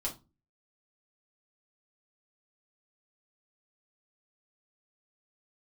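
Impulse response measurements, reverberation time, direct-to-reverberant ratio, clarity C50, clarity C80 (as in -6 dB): not exponential, -3.5 dB, 12.5 dB, 21.0 dB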